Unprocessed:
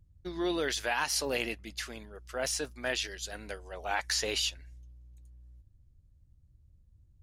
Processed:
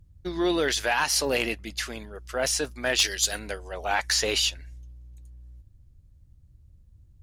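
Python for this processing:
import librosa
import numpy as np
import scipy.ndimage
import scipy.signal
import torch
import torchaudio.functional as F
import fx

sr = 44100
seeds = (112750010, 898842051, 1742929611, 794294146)

p1 = fx.high_shelf(x, sr, hz=2700.0, db=12.0, at=(2.98, 3.38), fade=0.02)
p2 = fx.fold_sine(p1, sr, drive_db=4, ceiling_db=-15.5)
y = p1 + (p2 * librosa.db_to_amplitude(-6.0))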